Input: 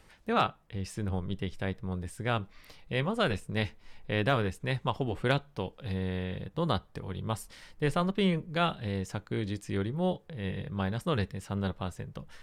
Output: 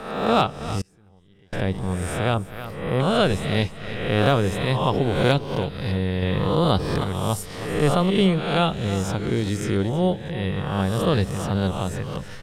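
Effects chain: reverse spectral sustain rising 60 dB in 0.83 s; 2.34–3.00 s: high-order bell 4 kHz -11.5 dB 2.3 oct; on a send: feedback delay 321 ms, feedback 31%, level -15 dB; 0.81–1.53 s: on the sum: inverted gate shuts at -28 dBFS, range -31 dB; dynamic bell 1.7 kHz, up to -7 dB, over -42 dBFS, Q 0.83; 6.22–7.04 s: level flattener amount 50%; trim +8.5 dB

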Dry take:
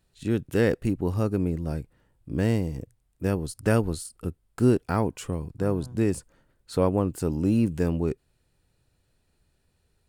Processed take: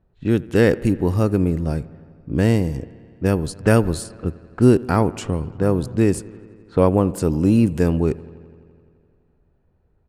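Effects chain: level-controlled noise filter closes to 1 kHz, open at -23.5 dBFS; on a send: feedback echo behind a low-pass 85 ms, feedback 77%, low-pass 2.9 kHz, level -21.5 dB; on the sum: resampled via 32 kHz; trim +7 dB

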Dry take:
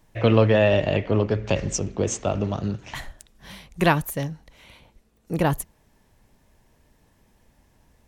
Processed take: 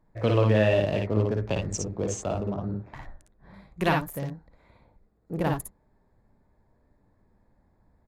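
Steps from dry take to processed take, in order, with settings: local Wiener filter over 15 samples; 2.51–3.54 s: treble shelf 3.8 kHz -12 dB; early reflections 56 ms -3.5 dB, 66 ms -8.5 dB; trim -6 dB

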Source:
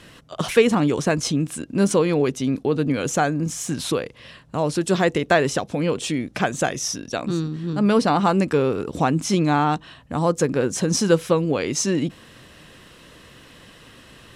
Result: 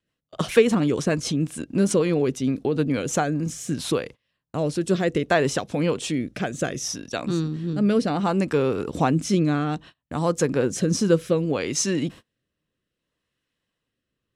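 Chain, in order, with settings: gate -36 dBFS, range -32 dB; rotary cabinet horn 6.7 Hz, later 0.65 Hz, at 2.81 s

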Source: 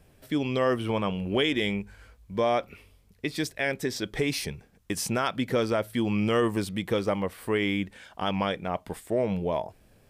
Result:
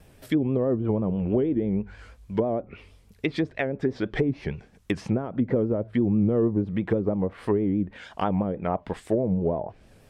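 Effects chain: vibrato 6.2 Hz 89 cents; low-pass that closes with the level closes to 410 Hz, closed at -23 dBFS; trim +5 dB

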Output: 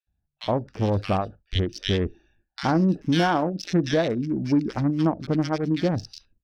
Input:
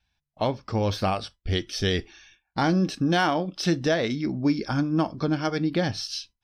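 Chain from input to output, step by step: local Wiener filter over 41 samples; bands offset in time highs, lows 70 ms, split 1.7 kHz; trim +2.5 dB

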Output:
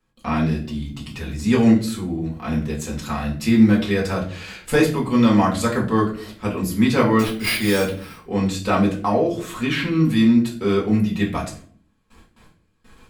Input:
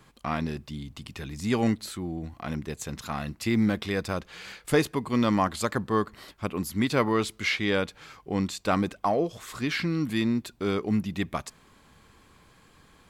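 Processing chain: gate with hold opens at -45 dBFS; peaking EQ 97 Hz +7.5 dB 0.45 oct; 7.19–8.18 s: sample-rate reducer 7 kHz, jitter 0%; 9.48–10.04 s: graphic EQ with 31 bands 1 kHz +5 dB, 3.15 kHz +4 dB, 5 kHz -10 dB; reverberation RT60 0.50 s, pre-delay 4 ms, DRR -4 dB

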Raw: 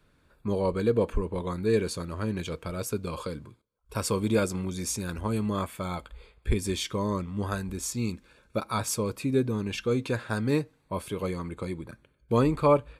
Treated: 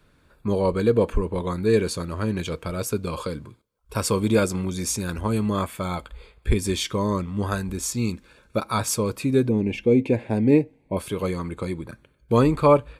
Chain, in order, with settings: 9.49–10.97 s: FFT filter 160 Hz 0 dB, 250 Hz +6 dB, 860 Hz 0 dB, 1.3 kHz -22 dB, 2.2 kHz +2 dB, 3.8 kHz -13 dB; trim +5 dB

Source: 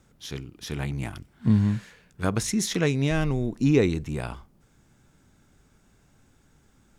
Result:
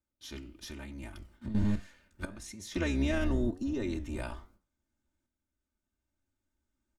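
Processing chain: octave divider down 1 oct, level -4 dB; gate with hold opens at -46 dBFS; comb 3.3 ms, depth 88%; 0.51–1.55 s: compression 6:1, threshold -33 dBFS, peak gain reduction 18 dB; peak limiter -16 dBFS, peak gain reduction 7.5 dB; 2.25–2.76 s: level held to a coarse grid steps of 19 dB; tremolo saw up 0.57 Hz, depth 55%; flange 1.1 Hz, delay 9.7 ms, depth 8 ms, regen +83%; 3.26–3.83 s: Butterworth band-stop 2.3 kHz, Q 3.9

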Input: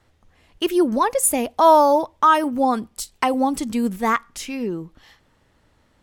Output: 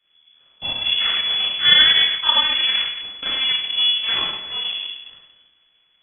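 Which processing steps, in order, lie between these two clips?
Schroeder reverb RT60 1.1 s, combs from 26 ms, DRR -9.5 dB; full-wave rectifier; frequency inversion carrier 3.4 kHz; trim -12 dB

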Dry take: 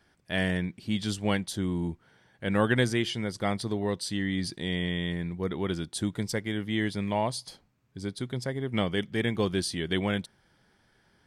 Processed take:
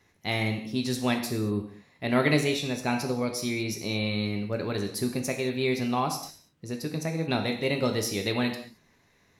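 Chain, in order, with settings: tape speed +20%; gated-style reverb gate 250 ms falling, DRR 3.5 dB

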